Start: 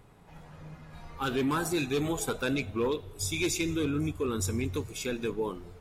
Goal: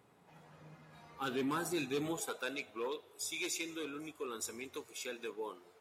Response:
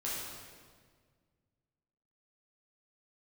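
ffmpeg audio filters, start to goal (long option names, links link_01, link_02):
-af "asetnsamples=nb_out_samples=441:pad=0,asendcmd='2.2 highpass f 470',highpass=180,volume=-6.5dB"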